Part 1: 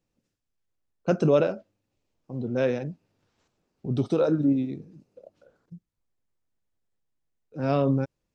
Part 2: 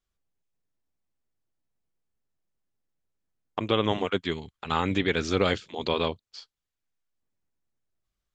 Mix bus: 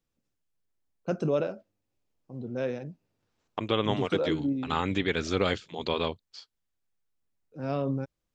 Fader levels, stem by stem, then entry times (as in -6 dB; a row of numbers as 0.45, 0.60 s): -6.5, -2.5 dB; 0.00, 0.00 s